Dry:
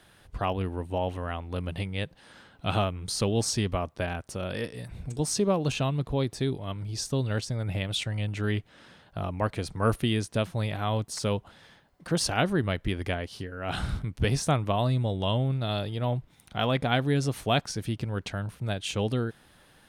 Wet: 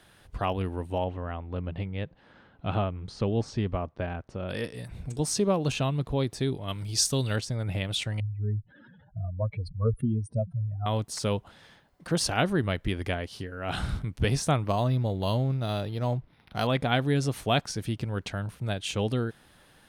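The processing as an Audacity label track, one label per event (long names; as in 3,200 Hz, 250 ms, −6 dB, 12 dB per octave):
1.040000	4.490000	head-to-tape spacing loss at 10 kHz 28 dB
6.680000	7.360000	high-shelf EQ 2,700 Hz +11.5 dB
8.200000	10.860000	expanding power law on the bin magnitudes exponent 3.5
14.660000	16.670000	linearly interpolated sample-rate reduction rate divided by 6×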